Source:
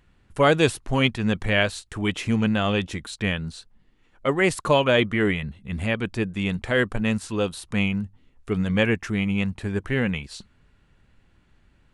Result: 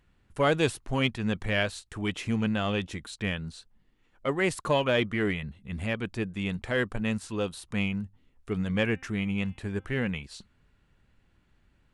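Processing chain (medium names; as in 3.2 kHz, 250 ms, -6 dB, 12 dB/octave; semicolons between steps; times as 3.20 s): 8.92–9.98 s: de-hum 262 Hz, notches 14; in parallel at -10 dB: one-sided clip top -19.5 dBFS; on the sum: trim -8 dB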